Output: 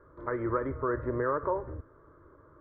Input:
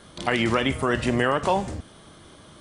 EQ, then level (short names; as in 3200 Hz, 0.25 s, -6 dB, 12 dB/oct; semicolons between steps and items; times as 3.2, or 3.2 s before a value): LPF 1400 Hz 24 dB/oct; fixed phaser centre 750 Hz, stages 6; -4.0 dB